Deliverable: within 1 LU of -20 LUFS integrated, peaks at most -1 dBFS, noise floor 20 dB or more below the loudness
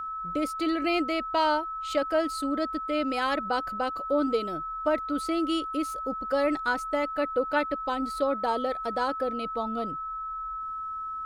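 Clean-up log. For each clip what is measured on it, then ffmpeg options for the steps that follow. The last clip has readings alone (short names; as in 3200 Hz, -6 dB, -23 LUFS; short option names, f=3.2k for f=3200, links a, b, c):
steady tone 1300 Hz; tone level -32 dBFS; loudness -28.5 LUFS; peak -14.0 dBFS; loudness target -20.0 LUFS
-> -af "bandreject=f=1.3k:w=30"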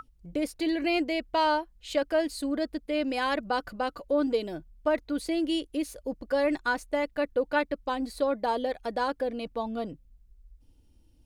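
steady tone none; loudness -29.5 LUFS; peak -14.5 dBFS; loudness target -20.0 LUFS
-> -af "volume=9.5dB"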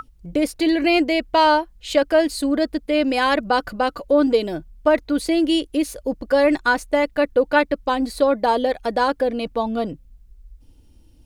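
loudness -20.0 LUFS; peak -5.0 dBFS; noise floor -51 dBFS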